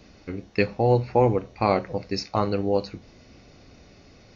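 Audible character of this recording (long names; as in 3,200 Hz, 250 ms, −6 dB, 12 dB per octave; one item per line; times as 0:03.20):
background noise floor −52 dBFS
spectral slope −6.0 dB per octave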